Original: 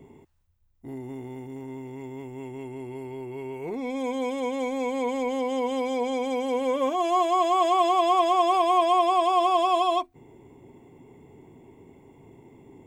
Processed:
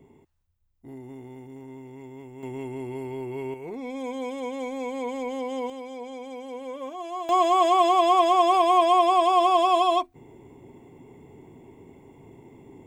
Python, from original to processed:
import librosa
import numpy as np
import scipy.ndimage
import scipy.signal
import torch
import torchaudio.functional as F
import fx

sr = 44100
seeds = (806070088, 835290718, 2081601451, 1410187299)

y = fx.gain(x, sr, db=fx.steps((0.0, -4.5), (2.43, 3.0), (3.54, -3.5), (5.7, -10.5), (7.29, 2.0)))